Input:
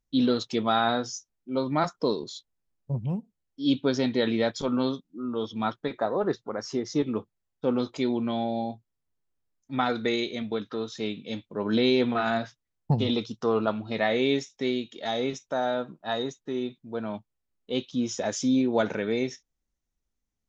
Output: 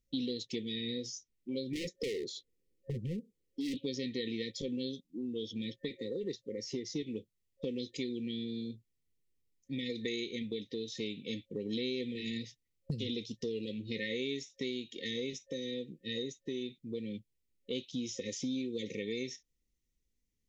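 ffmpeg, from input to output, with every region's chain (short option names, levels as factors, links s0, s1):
-filter_complex "[0:a]asettb=1/sr,asplit=3[s0][s1][s2];[s0]atrim=end=1.734[s3];[s1]atrim=start=1.73:end=3.78,asetpts=PTS-STARTPTS,afade=t=in:d=0.004:c=qsin,afade=t=out:st=2.046:d=0.004:c=qsin,equalizer=f=450:w=0.87:g=13,volume=15.8,asoftclip=hard,volume=0.0631[s4];[s2]atrim=start=3.776[s5];[s3][s4]acrossfade=d=0.004:c1=hsin:c2=qsin[s6];[s6][s5]acrossfade=d=0.004:c1=qsin:c2=hsin,afftfilt=real='re*(1-between(b*sr/4096,540,1800))':imag='im*(1-between(b*sr/4096,540,1800))':win_size=4096:overlap=0.75,acrossover=split=2900|6000[s7][s8][s9];[s7]acompressor=threshold=0.0126:ratio=4[s10];[s8]acompressor=threshold=0.00447:ratio=4[s11];[s9]acompressor=threshold=0.00178:ratio=4[s12];[s10][s11][s12]amix=inputs=3:normalize=0,volume=1.12"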